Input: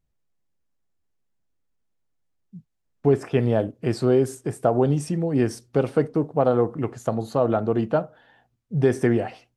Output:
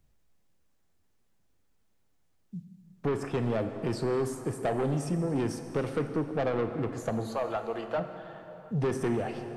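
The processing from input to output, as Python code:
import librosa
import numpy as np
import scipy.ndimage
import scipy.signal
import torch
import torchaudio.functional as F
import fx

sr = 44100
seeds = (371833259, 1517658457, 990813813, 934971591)

y = fx.highpass(x, sr, hz=700.0, slope=12, at=(7.28, 7.97), fade=0.02)
y = 10.0 ** (-20.0 / 20.0) * np.tanh(y / 10.0 ** (-20.0 / 20.0))
y = fx.rev_plate(y, sr, seeds[0], rt60_s=2.3, hf_ratio=0.75, predelay_ms=0, drr_db=8.0)
y = fx.band_squash(y, sr, depth_pct=40)
y = y * 10.0 ** (-4.0 / 20.0)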